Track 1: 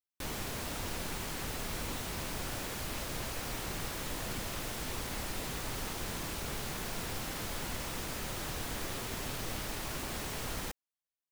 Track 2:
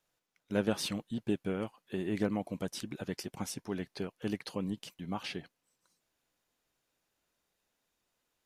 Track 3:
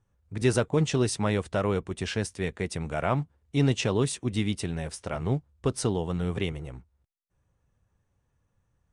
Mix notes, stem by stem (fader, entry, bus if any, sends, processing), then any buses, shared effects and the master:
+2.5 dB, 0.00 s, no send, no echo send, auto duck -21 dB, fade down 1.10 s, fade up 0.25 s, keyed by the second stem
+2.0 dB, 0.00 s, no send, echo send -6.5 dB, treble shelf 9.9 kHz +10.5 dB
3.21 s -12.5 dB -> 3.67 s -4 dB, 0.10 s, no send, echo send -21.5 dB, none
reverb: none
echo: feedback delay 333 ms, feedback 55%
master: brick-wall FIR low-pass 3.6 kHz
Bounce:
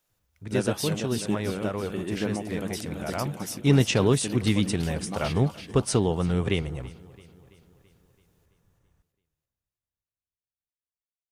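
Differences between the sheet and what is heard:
stem 1: muted; stem 3 -12.5 dB -> -4.5 dB; master: missing brick-wall FIR low-pass 3.6 kHz

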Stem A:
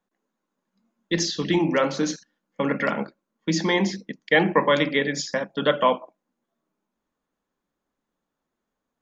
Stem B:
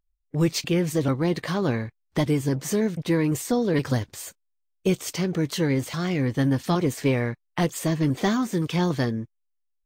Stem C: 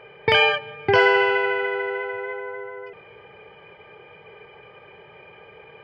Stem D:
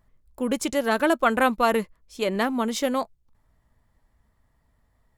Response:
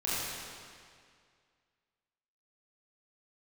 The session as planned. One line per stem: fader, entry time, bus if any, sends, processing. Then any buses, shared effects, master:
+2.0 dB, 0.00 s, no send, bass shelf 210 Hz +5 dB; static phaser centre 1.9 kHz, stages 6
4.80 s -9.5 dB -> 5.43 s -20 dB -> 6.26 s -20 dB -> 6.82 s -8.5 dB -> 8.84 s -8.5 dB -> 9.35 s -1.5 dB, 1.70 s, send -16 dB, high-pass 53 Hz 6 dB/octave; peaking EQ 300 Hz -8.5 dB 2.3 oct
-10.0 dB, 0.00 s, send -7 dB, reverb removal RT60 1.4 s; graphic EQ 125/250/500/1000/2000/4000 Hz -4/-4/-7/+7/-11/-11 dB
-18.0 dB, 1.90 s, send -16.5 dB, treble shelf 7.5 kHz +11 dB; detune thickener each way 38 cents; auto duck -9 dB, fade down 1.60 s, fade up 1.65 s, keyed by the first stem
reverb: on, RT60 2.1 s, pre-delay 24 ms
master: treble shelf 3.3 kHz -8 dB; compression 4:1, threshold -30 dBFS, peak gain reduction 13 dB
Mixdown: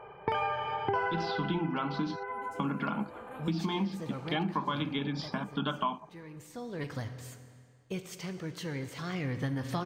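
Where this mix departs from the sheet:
stem B: entry 1.70 s -> 3.05 s; stem C -10.0 dB -> 0.0 dB

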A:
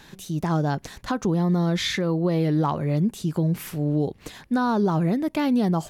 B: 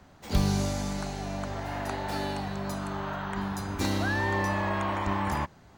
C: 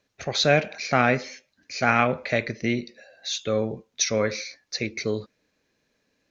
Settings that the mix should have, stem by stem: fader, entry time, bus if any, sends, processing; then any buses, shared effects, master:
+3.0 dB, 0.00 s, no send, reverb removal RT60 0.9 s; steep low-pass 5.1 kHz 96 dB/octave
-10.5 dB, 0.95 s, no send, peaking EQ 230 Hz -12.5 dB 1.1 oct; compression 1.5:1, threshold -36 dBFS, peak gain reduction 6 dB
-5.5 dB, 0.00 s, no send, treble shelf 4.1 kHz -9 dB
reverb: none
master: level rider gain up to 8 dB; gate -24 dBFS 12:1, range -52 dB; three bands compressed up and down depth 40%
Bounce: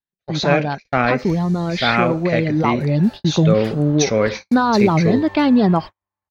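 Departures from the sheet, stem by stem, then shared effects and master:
stem C -5.5 dB -> +1.5 dB; master: missing three bands compressed up and down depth 40%

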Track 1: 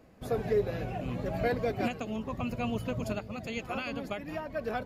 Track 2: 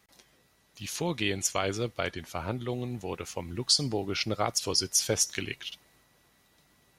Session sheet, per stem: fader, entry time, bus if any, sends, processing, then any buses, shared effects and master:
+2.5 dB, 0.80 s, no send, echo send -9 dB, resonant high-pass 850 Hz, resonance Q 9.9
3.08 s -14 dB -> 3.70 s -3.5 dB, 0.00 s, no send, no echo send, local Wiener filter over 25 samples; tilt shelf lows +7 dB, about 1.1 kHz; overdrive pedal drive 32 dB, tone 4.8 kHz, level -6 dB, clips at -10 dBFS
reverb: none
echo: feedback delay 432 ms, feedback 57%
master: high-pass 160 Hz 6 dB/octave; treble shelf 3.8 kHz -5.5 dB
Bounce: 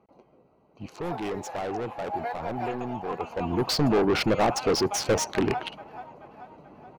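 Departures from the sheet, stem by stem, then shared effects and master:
stem 1 +2.5 dB -> -5.0 dB; master: missing high-pass 160 Hz 6 dB/octave

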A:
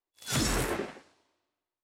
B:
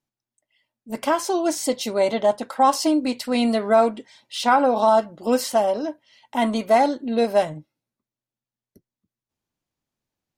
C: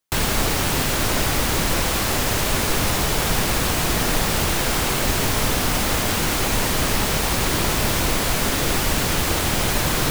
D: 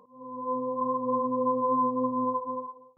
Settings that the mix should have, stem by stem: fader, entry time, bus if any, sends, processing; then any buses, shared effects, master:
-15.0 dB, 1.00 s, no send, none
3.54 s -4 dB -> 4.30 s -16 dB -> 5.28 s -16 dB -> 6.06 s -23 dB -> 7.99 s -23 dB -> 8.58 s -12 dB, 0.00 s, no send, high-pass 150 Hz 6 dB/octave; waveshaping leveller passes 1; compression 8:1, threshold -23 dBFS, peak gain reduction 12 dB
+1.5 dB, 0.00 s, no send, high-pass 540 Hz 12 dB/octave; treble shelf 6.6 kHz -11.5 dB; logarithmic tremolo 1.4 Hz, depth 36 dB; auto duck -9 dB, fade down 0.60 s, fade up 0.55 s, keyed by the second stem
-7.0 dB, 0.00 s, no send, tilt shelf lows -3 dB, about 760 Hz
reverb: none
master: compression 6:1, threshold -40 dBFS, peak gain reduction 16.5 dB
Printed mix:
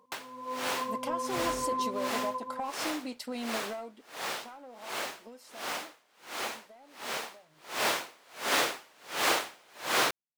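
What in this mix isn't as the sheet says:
stem B -4.0 dB -> -11.0 dB; master: missing compression 6:1, threshold -40 dBFS, peak gain reduction 16.5 dB

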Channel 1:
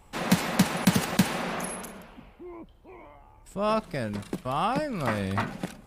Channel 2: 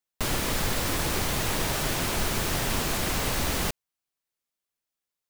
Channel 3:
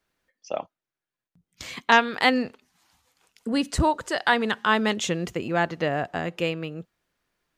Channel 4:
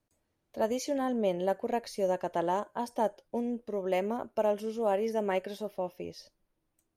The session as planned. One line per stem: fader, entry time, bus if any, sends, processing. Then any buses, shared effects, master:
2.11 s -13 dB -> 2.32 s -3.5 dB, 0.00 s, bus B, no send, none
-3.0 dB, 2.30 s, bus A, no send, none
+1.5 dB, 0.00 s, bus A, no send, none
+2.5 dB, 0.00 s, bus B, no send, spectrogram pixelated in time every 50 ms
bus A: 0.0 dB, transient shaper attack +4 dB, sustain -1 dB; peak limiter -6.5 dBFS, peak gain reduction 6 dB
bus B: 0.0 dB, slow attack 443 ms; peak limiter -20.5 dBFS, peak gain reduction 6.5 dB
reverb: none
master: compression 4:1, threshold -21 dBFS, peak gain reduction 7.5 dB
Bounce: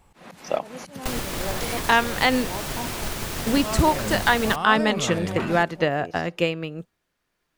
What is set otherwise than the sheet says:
stem 1 -13.0 dB -> -2.5 dB; stem 2: entry 2.30 s -> 0.85 s; master: missing compression 4:1, threshold -21 dBFS, peak gain reduction 7.5 dB

